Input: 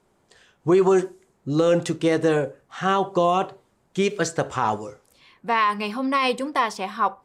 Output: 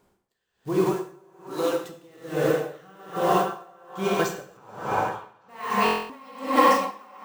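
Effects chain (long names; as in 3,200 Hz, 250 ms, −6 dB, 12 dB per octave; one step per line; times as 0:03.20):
one scale factor per block 5 bits
downward compressor, threshold −21 dBFS, peak gain reduction 8 dB
0:00.91–0:01.84: high-pass filter 460 Hz 12 dB per octave
dense smooth reverb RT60 3.2 s, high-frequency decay 0.85×, DRR −4 dB
bad sample-rate conversion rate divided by 2×, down none, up hold
0:04.57–0:05.49: high-shelf EQ 4,800 Hz −8.5 dB
0:06.21–0:06.91: comb filter 3.7 ms, depth 78%
echo through a band-pass that steps 291 ms, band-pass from 730 Hz, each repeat 0.7 octaves, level −1 dB
buffer that repeats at 0:05.84, samples 1,024, times 10
tremolo with a sine in dB 1.2 Hz, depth 30 dB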